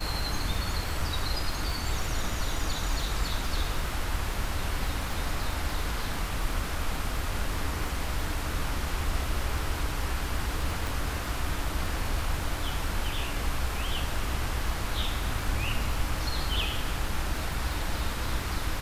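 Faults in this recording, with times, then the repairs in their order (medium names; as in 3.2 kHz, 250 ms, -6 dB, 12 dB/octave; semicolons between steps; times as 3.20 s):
crackle 30 per s -33 dBFS
10.87 s: pop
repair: de-click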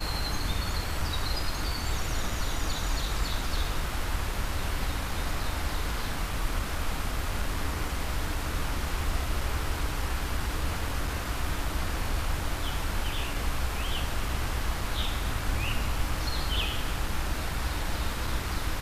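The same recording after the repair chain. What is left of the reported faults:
10.87 s: pop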